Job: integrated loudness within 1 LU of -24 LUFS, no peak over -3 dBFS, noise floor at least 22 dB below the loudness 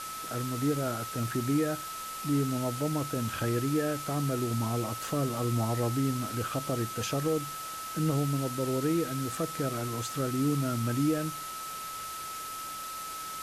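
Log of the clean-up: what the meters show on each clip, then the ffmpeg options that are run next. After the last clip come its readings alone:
steady tone 1.3 kHz; tone level -38 dBFS; noise floor -39 dBFS; noise floor target -54 dBFS; loudness -31.5 LUFS; peak level -17.5 dBFS; loudness target -24.0 LUFS
-> -af "bandreject=f=1300:w=30"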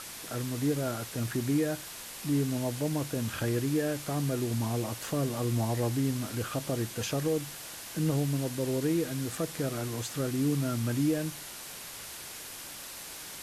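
steady tone not found; noise floor -43 dBFS; noise floor target -54 dBFS
-> -af "afftdn=nr=11:nf=-43"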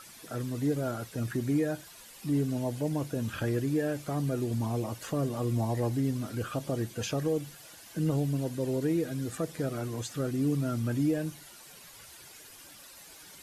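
noise floor -51 dBFS; noise floor target -54 dBFS
-> -af "afftdn=nr=6:nf=-51"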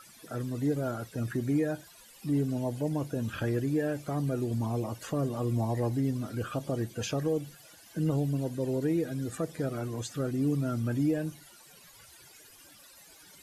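noise floor -55 dBFS; loudness -32.0 LUFS; peak level -19.0 dBFS; loudness target -24.0 LUFS
-> -af "volume=2.51"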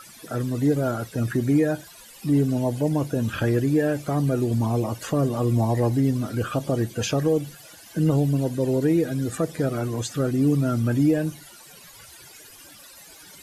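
loudness -24.0 LUFS; peak level -11.0 dBFS; noise floor -47 dBFS

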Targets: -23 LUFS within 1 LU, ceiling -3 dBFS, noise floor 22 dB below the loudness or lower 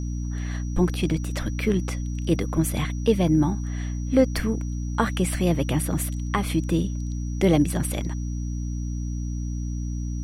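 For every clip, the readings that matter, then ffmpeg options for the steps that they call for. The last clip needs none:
hum 60 Hz; highest harmonic 300 Hz; hum level -26 dBFS; steady tone 5.8 kHz; tone level -47 dBFS; loudness -25.5 LUFS; peak level -7.0 dBFS; loudness target -23.0 LUFS
-> -af "bandreject=f=60:t=h:w=6,bandreject=f=120:t=h:w=6,bandreject=f=180:t=h:w=6,bandreject=f=240:t=h:w=6,bandreject=f=300:t=h:w=6"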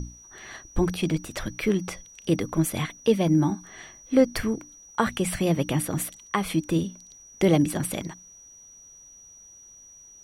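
hum not found; steady tone 5.8 kHz; tone level -47 dBFS
-> -af "bandreject=f=5800:w=30"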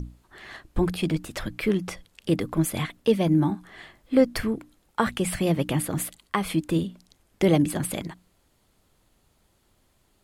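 steady tone not found; loudness -26.0 LUFS; peak level -7.5 dBFS; loudness target -23.0 LUFS
-> -af "volume=1.41"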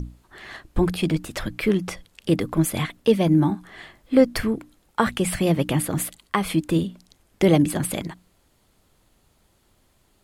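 loudness -23.0 LUFS; peak level -4.5 dBFS; noise floor -63 dBFS

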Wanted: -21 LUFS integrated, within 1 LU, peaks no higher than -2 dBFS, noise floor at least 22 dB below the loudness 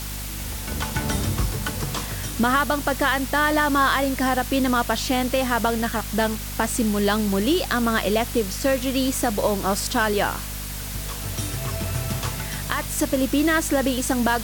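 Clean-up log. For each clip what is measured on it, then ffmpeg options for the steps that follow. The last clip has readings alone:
hum 50 Hz; highest harmonic 250 Hz; hum level -31 dBFS; noise floor -31 dBFS; noise floor target -45 dBFS; loudness -23.0 LUFS; peak level -7.5 dBFS; loudness target -21.0 LUFS
-> -af "bandreject=f=50:t=h:w=6,bandreject=f=100:t=h:w=6,bandreject=f=150:t=h:w=6,bandreject=f=200:t=h:w=6,bandreject=f=250:t=h:w=6"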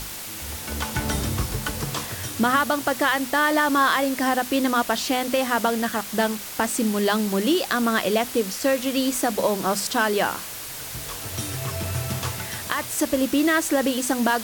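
hum not found; noise floor -35 dBFS; noise floor target -46 dBFS
-> -af "afftdn=nr=11:nf=-35"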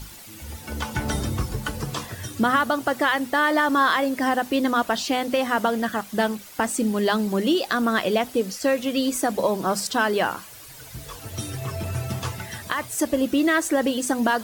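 noise floor -43 dBFS; noise floor target -46 dBFS
-> -af "afftdn=nr=6:nf=-43"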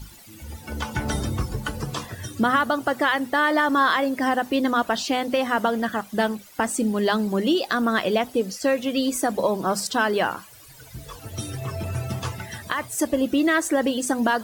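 noise floor -46 dBFS; loudness -23.5 LUFS; peak level -8.5 dBFS; loudness target -21.0 LUFS
-> -af "volume=1.33"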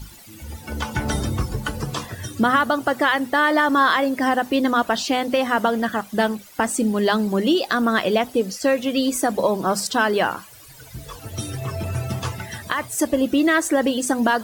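loudness -21.0 LUFS; peak level -6.0 dBFS; noise floor -44 dBFS

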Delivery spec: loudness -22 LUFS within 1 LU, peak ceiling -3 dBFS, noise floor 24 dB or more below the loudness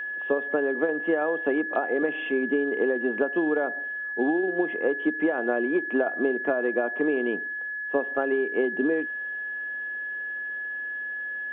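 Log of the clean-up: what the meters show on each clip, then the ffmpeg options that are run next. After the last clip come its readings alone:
steady tone 1.7 kHz; tone level -30 dBFS; loudness -26.5 LUFS; peak level -12.0 dBFS; loudness target -22.0 LUFS
-> -af "bandreject=f=1700:w=30"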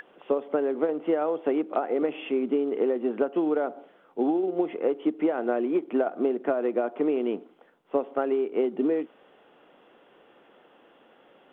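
steady tone not found; loudness -27.0 LUFS; peak level -13.0 dBFS; loudness target -22.0 LUFS
-> -af "volume=1.78"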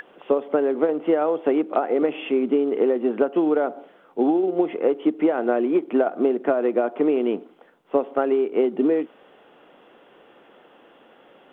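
loudness -22.0 LUFS; peak level -8.0 dBFS; noise floor -54 dBFS

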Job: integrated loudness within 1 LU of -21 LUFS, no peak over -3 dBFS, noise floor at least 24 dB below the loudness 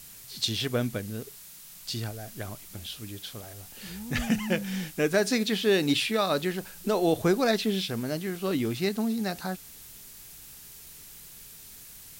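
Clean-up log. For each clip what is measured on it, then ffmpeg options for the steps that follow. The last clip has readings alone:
noise floor -48 dBFS; noise floor target -53 dBFS; loudness -28.5 LUFS; peak level -13.0 dBFS; loudness target -21.0 LUFS
-> -af "afftdn=nr=6:nf=-48"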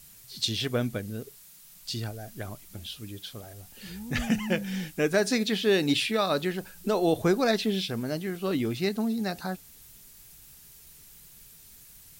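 noise floor -52 dBFS; loudness -28.0 LUFS; peak level -13.0 dBFS; loudness target -21.0 LUFS
-> -af "volume=2.24"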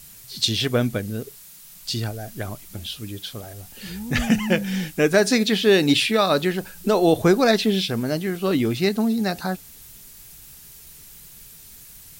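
loudness -21.0 LUFS; peak level -6.0 dBFS; noise floor -45 dBFS

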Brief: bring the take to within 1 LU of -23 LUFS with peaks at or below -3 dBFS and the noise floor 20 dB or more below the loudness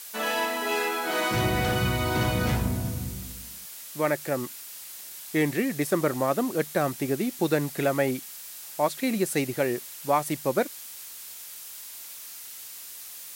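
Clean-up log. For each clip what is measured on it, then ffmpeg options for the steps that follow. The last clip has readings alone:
noise floor -42 dBFS; noise floor target -47 dBFS; loudness -27.0 LUFS; peak level -11.5 dBFS; loudness target -23.0 LUFS
-> -af "afftdn=nr=6:nf=-42"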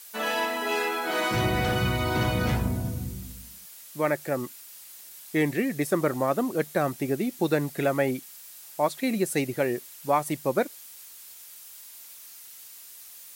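noise floor -47 dBFS; loudness -27.0 LUFS; peak level -11.5 dBFS; loudness target -23.0 LUFS
-> -af "volume=1.58"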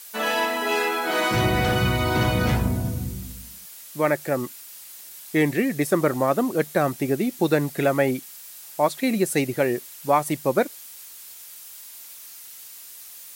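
loudness -23.0 LUFS; peak level -7.5 dBFS; noise floor -43 dBFS

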